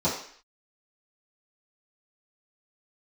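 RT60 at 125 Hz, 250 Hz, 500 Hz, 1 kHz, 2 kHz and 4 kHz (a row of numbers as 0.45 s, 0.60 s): 0.35 s, 0.50 s, 0.50 s, 0.55 s, 0.65 s, 0.60 s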